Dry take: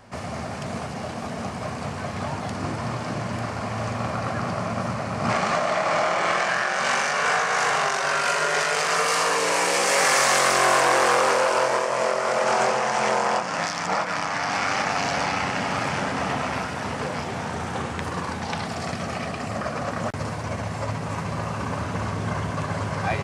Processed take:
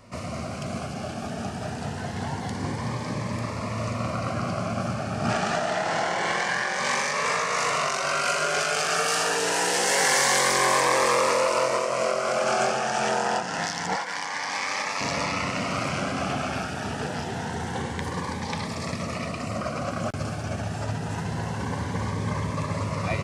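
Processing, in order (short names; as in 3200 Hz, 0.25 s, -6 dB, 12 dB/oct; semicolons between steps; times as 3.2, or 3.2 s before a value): 13.96–15.01 HPF 730 Hz 6 dB/oct; cascading phaser rising 0.26 Hz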